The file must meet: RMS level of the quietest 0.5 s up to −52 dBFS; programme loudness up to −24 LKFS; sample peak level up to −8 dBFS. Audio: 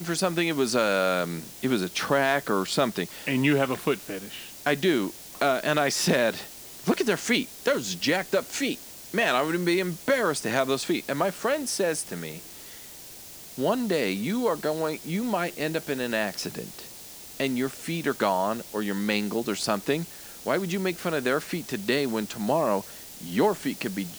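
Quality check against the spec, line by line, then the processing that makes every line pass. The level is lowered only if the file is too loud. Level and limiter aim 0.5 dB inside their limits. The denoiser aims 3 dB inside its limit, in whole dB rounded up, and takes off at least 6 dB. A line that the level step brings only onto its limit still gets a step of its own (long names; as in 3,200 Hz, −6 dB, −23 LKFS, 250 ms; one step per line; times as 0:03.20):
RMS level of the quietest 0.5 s −44 dBFS: out of spec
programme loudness −26.5 LKFS: in spec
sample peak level −9.0 dBFS: in spec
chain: broadband denoise 11 dB, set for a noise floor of −44 dBFS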